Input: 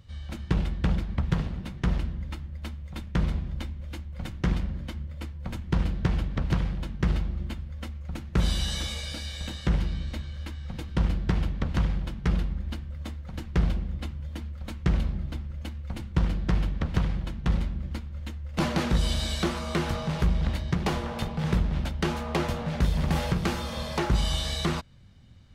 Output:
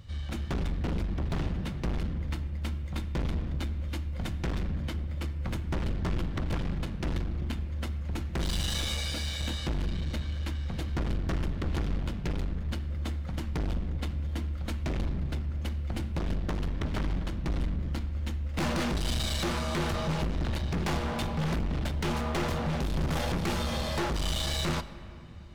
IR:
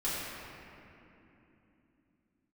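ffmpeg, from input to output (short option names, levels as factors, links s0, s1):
-filter_complex "[0:a]aeval=exprs='clip(val(0),-1,0.0188)':c=same,aeval=exprs='0.251*(cos(1*acos(clip(val(0)/0.251,-1,1)))-cos(1*PI/2))+0.112*(cos(5*acos(clip(val(0)/0.251,-1,1)))-cos(5*PI/2))+0.0501*(cos(6*acos(clip(val(0)/0.251,-1,1)))-cos(6*PI/2))':c=same,asplit=2[s0][s1];[1:a]atrim=start_sample=2205[s2];[s1][s2]afir=irnorm=-1:irlink=0,volume=0.119[s3];[s0][s3]amix=inputs=2:normalize=0,volume=0.447"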